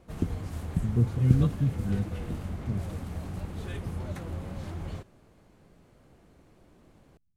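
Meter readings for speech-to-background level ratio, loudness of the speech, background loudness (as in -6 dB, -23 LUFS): 6.5 dB, -29.0 LUFS, -35.5 LUFS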